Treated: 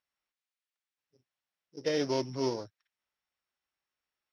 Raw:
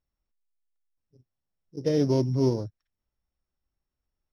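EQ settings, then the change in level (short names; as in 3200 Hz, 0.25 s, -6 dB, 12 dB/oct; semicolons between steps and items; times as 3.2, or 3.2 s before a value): band-pass 2300 Hz, Q 0.77; +7.0 dB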